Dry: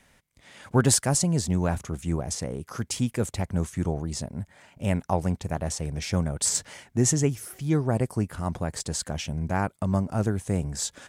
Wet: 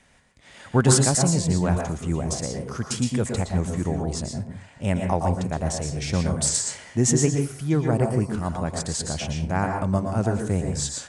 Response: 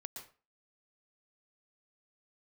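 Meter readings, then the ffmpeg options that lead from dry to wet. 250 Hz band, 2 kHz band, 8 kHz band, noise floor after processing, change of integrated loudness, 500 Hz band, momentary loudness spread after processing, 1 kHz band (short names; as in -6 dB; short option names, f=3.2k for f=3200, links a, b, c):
+3.0 dB, +3.0 dB, +2.5 dB, -50 dBFS, +3.0 dB, +4.0 dB, 9 LU, +4.0 dB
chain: -filter_complex "[1:a]atrim=start_sample=2205[a];[0:a][a]afir=irnorm=-1:irlink=0,aresample=22050,aresample=44100,volume=7dB"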